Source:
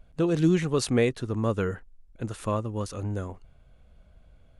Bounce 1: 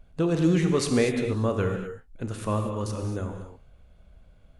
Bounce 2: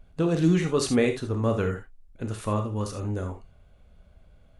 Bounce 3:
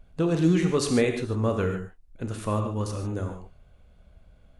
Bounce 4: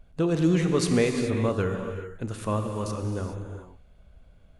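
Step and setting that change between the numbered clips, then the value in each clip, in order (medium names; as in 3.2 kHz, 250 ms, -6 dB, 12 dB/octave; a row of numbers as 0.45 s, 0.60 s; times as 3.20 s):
gated-style reverb, gate: 270 ms, 100 ms, 170 ms, 450 ms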